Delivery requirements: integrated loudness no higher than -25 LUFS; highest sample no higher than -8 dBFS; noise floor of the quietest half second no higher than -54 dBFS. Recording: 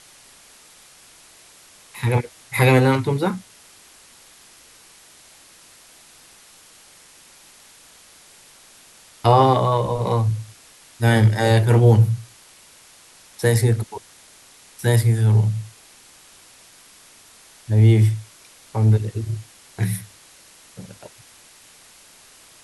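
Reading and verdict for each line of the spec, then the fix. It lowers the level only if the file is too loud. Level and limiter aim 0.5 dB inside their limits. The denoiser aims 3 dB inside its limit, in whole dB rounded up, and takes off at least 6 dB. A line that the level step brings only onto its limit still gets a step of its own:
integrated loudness -19.0 LUFS: fail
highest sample -3.0 dBFS: fail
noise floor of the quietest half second -49 dBFS: fail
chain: trim -6.5 dB

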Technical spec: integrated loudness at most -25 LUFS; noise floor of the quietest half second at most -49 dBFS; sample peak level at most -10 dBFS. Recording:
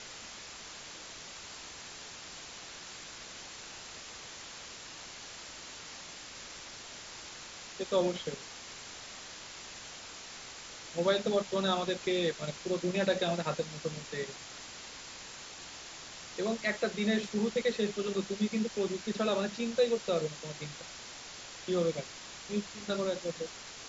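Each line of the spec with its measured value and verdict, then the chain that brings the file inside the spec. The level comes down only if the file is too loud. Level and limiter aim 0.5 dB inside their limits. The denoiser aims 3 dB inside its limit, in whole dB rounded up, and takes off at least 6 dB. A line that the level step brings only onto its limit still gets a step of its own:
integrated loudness -36.0 LUFS: pass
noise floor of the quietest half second -47 dBFS: fail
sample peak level -16.0 dBFS: pass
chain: noise reduction 6 dB, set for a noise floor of -47 dBFS

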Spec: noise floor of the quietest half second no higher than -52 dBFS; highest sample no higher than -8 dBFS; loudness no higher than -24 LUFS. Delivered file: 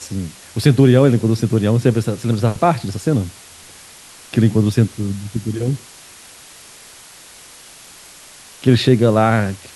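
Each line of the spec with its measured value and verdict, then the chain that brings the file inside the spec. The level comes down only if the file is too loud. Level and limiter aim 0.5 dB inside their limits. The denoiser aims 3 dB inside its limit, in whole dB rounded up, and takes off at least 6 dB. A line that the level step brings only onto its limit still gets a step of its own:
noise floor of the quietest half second -42 dBFS: fail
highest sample -1.5 dBFS: fail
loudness -16.5 LUFS: fail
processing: noise reduction 6 dB, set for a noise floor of -42 dBFS; trim -8 dB

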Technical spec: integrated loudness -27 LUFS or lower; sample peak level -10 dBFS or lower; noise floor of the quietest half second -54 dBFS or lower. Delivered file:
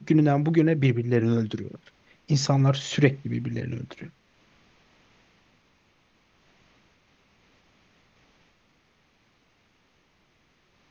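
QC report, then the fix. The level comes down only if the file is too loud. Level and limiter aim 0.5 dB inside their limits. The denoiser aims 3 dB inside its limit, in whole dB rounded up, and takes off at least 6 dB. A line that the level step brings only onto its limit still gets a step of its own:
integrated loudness -24.0 LUFS: fail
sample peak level -4.5 dBFS: fail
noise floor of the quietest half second -65 dBFS: pass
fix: trim -3.5 dB; peak limiter -10.5 dBFS

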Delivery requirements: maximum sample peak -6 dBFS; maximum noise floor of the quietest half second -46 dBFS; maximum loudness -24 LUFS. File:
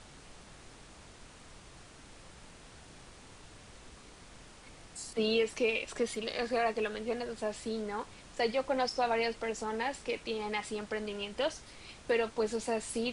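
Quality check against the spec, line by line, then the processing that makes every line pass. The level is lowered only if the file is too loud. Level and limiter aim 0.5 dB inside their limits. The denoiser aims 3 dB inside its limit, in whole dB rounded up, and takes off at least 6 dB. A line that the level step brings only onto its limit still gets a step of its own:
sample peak -18.5 dBFS: pass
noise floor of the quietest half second -53 dBFS: pass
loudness -34.0 LUFS: pass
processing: none needed

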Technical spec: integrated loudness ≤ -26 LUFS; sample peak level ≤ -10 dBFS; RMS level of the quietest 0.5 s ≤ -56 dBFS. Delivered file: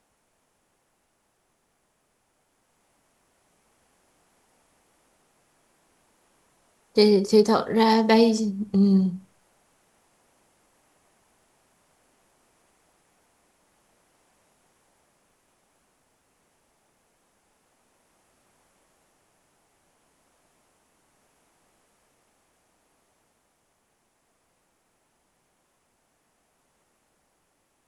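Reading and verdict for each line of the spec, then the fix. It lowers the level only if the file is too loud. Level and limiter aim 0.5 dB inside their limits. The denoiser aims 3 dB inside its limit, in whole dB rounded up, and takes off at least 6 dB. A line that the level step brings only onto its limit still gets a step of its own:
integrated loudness -20.5 LUFS: fail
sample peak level -5.0 dBFS: fail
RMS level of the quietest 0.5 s -71 dBFS: pass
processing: trim -6 dB

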